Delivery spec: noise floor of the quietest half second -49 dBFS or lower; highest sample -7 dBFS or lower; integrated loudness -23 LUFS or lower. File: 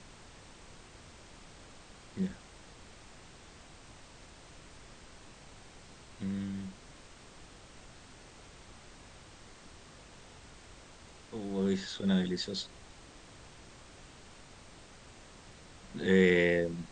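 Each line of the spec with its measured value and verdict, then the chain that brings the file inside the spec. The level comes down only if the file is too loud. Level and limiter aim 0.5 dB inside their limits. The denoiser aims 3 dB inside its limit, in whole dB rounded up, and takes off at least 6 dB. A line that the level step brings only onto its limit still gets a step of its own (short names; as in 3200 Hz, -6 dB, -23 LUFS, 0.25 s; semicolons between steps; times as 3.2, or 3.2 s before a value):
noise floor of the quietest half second -54 dBFS: OK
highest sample -13.0 dBFS: OK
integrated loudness -32.0 LUFS: OK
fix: none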